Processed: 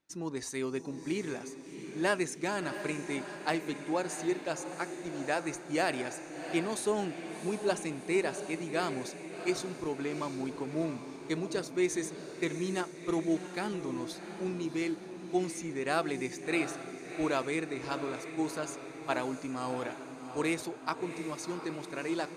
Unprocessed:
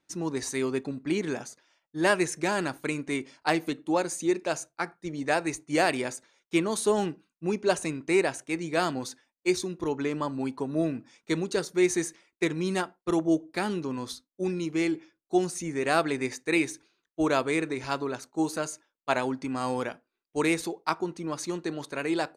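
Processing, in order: diffused feedback echo 0.711 s, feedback 58%, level -9.5 dB; gain -6 dB

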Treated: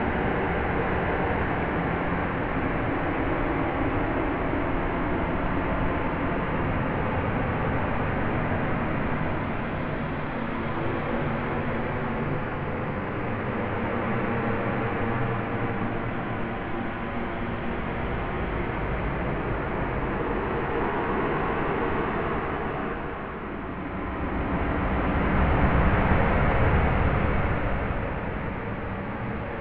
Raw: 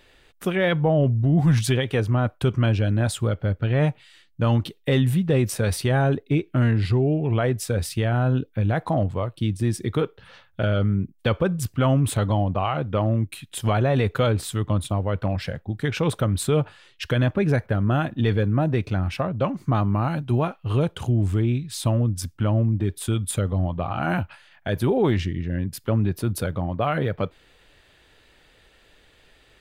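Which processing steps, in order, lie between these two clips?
half-waves squared off; Paulstretch 4.9×, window 1.00 s, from 19.64; mistuned SSB -330 Hz 310–2700 Hz

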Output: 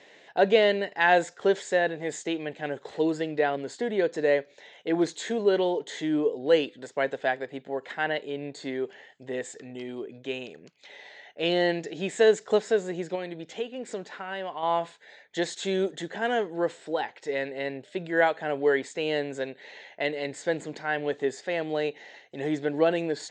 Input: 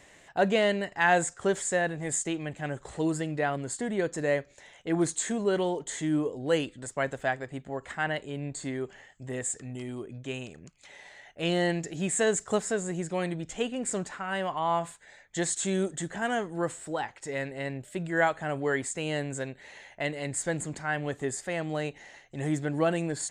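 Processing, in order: speaker cabinet 260–5300 Hz, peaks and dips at 450 Hz +6 dB, 1200 Hz -7 dB, 3700 Hz +4 dB; 13.15–14.63 compressor 2:1, threshold -37 dBFS, peak gain reduction 9.5 dB; gain +2.5 dB

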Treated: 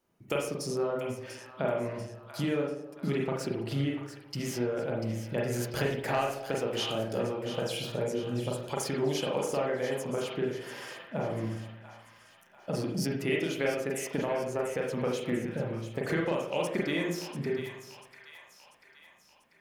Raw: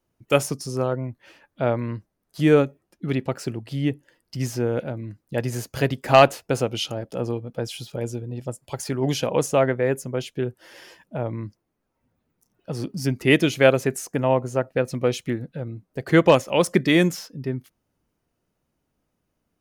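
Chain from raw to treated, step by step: low shelf 100 Hz -12 dB; compressor 10:1, threshold -30 dBFS, peak gain reduction 21.5 dB; split-band echo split 830 Hz, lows 0.125 s, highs 0.691 s, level -10 dB; reverb RT60 0.45 s, pre-delay 36 ms, DRR -1.5 dB

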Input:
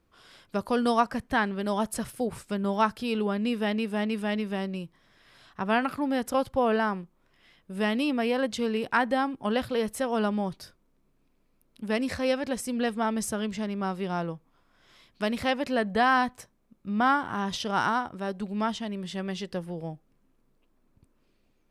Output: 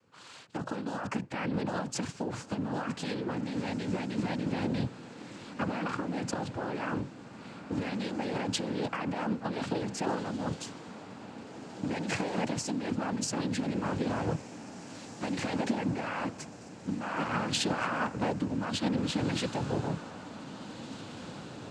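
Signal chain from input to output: octaver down 2 oct, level +2 dB; negative-ratio compressor -30 dBFS, ratio -1; noise vocoder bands 8; diffused feedback echo 1.946 s, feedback 61%, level -13 dB

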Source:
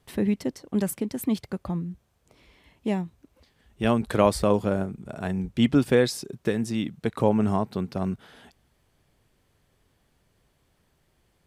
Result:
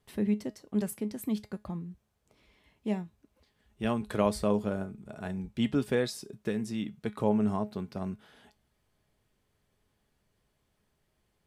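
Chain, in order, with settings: resonator 210 Hz, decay 0.21 s, harmonics all, mix 60%; gain -1.5 dB

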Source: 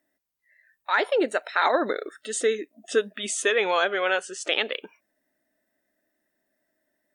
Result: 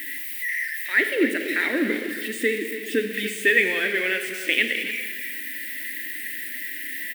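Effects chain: switching spikes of -19 dBFS; EQ curve 120 Hz 0 dB, 280 Hz +10 dB, 810 Hz -20 dB, 1300 Hz -16 dB, 1900 Hz +11 dB, 6500 Hz -20 dB, 10000 Hz -12 dB; on a send: echo 0.284 s -12.5 dB; on the sum: Schroeder reverb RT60 1.5 s, combs from 27 ms, DRR 6.5 dB

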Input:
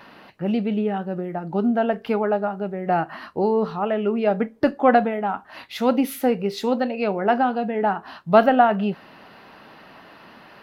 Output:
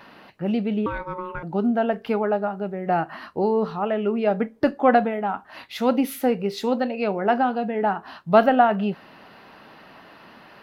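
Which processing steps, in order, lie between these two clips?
0.86–1.43 ring modulator 730 Hz; gain -1 dB

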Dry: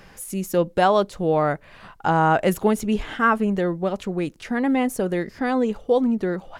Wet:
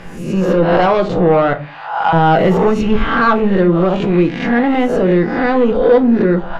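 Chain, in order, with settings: spectral swells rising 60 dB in 0.67 s; 1.53–2.13 HPF 650 Hz 24 dB/oct; in parallel at +2.5 dB: limiter -13.5 dBFS, peak gain reduction 10 dB; on the sum: soft clip -10 dBFS, distortion -14 dB; air absorption 210 m; shoebox room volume 180 m³, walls furnished, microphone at 0.71 m; gain +3.5 dB

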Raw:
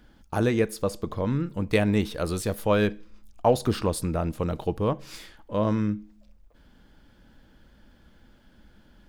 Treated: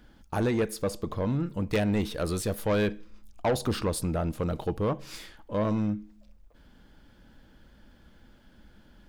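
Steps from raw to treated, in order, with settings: soft clip -20 dBFS, distortion -12 dB

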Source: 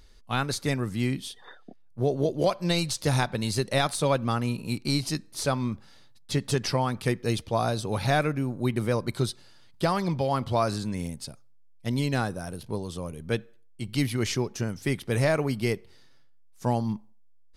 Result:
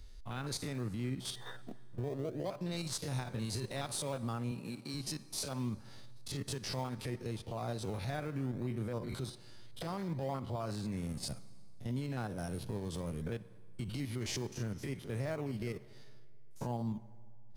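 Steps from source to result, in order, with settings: stepped spectrum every 50 ms; in parallel at -11 dB: decimation with a swept rate 22×, swing 100% 0.64 Hz; on the sum: compressor 12:1, threshold -37 dBFS, peak gain reduction 18.5 dB; limiter -34 dBFS, peak gain reduction 10.5 dB; 4.51–4.94 HPF 150 Hz; on a send at -16.5 dB: reverb RT60 4.3 s, pre-delay 4 ms; on the sum: three-band expander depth 40%; gain +4.5 dB

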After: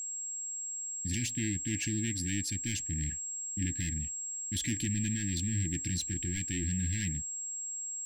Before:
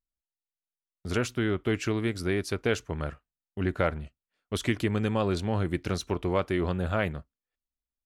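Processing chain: overloaded stage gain 28.5 dB; whine 7600 Hz -36 dBFS; brick-wall FIR band-stop 340–1600 Hz

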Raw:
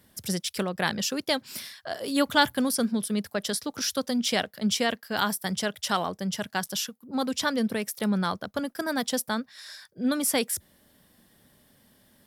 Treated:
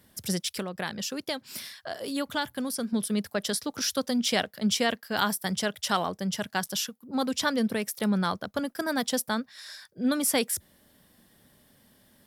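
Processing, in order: 0.49–2.93 compressor 2:1, threshold -33 dBFS, peak gain reduction 10.5 dB

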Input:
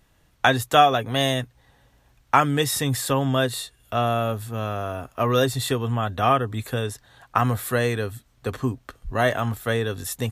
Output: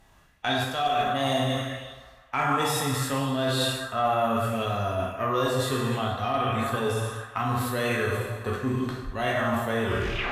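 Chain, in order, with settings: tape stop at the end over 0.49 s; plate-style reverb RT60 1.1 s, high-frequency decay 1×, DRR -1.5 dB; harmonic-percussive split percussive -8 dB; added harmonics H 8 -32 dB, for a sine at -0.5 dBFS; reverse; compressor 6:1, threshold -28 dBFS, peak gain reduction 19 dB; reverse; high shelf 12000 Hz -4.5 dB; on a send: narrowing echo 0.157 s, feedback 71%, band-pass 1200 Hz, level -10 dB; on the sum: LFO bell 0.72 Hz 830–4500 Hz +7 dB; gain +3.5 dB

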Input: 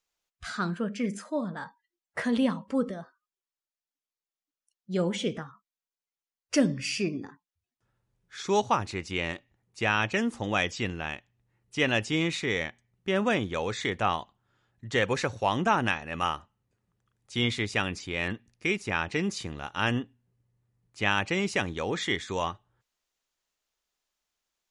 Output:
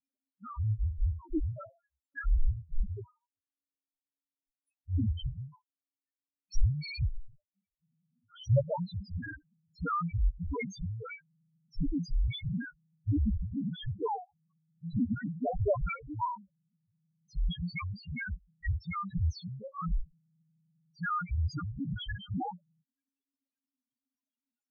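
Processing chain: loudest bins only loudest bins 1; frequency shift -280 Hz; gain +7 dB

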